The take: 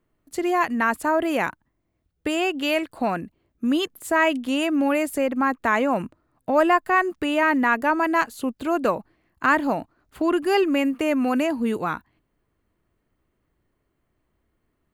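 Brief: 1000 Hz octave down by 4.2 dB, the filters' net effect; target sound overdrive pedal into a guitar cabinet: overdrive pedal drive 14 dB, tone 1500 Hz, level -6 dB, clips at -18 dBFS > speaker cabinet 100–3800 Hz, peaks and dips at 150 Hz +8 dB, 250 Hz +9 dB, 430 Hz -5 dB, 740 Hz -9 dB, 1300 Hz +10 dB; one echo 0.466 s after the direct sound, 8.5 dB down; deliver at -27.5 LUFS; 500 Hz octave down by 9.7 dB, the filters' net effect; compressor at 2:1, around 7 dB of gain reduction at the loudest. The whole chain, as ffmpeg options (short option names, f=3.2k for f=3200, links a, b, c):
-filter_complex "[0:a]equalizer=f=500:t=o:g=-8.5,equalizer=f=1k:t=o:g=-7.5,acompressor=threshold=-33dB:ratio=2,aecho=1:1:466:0.376,asplit=2[a][b];[b]highpass=f=720:p=1,volume=14dB,asoftclip=type=tanh:threshold=-18dB[c];[a][c]amix=inputs=2:normalize=0,lowpass=f=1.5k:p=1,volume=-6dB,highpass=100,equalizer=f=150:t=q:w=4:g=8,equalizer=f=250:t=q:w=4:g=9,equalizer=f=430:t=q:w=4:g=-5,equalizer=f=740:t=q:w=4:g=-9,equalizer=f=1.3k:t=q:w=4:g=10,lowpass=f=3.8k:w=0.5412,lowpass=f=3.8k:w=1.3066,volume=0.5dB"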